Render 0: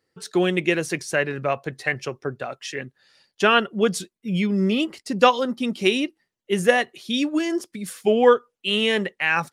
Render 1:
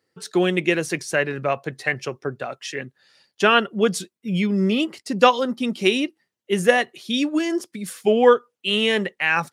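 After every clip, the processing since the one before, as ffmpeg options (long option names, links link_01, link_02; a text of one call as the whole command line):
ffmpeg -i in.wav -af "highpass=88,volume=1dB" out.wav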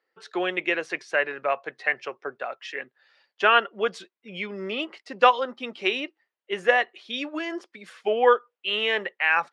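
ffmpeg -i in.wav -af "highpass=590,lowpass=2700" out.wav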